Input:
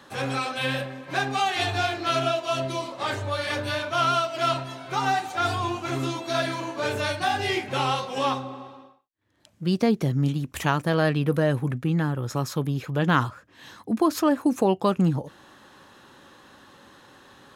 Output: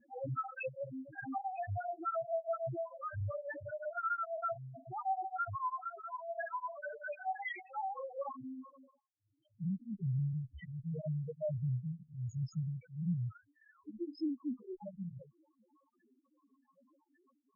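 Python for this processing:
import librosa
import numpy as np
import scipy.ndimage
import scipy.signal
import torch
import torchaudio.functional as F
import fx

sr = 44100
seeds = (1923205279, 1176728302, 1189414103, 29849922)

y = fx.highpass(x, sr, hz=760.0, slope=12, at=(5.55, 7.78))
y = fx.rider(y, sr, range_db=10, speed_s=2.0)
y = fx.spec_topn(y, sr, count=8)
y = fx.tube_stage(y, sr, drive_db=27.0, bias=0.35)
y = fx.spec_topn(y, sr, count=1)
y = fx.flanger_cancel(y, sr, hz=0.66, depth_ms=7.2)
y = F.gain(torch.from_numpy(y), 3.0).numpy()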